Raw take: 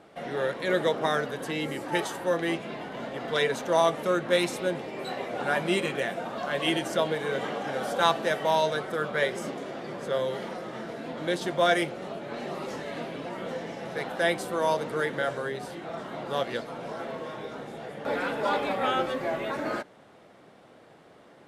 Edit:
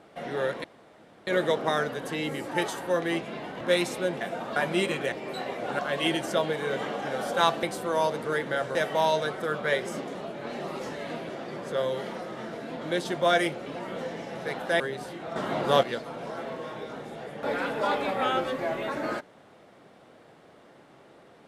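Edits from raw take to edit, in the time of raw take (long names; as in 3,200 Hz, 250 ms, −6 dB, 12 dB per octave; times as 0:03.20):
0:00.64: splice in room tone 0.63 s
0:02.98–0:04.23: remove
0:04.83–0:05.50: swap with 0:06.06–0:06.41
0:12.02–0:13.16: move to 0:09.65
0:14.30–0:15.42: move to 0:08.25
0:15.98–0:16.45: clip gain +7.5 dB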